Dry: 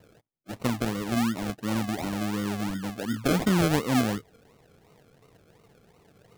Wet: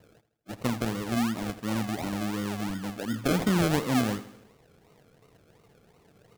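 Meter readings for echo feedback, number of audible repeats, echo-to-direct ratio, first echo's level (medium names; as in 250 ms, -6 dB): 53%, 4, -13.5 dB, -15.0 dB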